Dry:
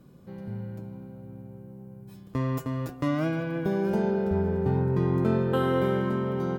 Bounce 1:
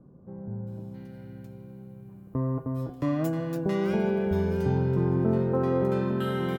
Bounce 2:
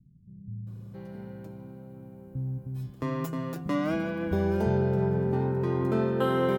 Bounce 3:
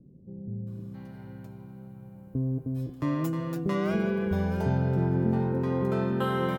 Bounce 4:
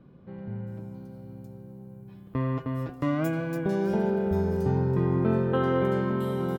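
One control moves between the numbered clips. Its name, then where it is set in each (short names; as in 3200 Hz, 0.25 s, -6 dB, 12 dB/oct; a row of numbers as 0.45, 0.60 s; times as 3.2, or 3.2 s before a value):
bands offset in time, split: 1200, 180, 470, 3600 Hz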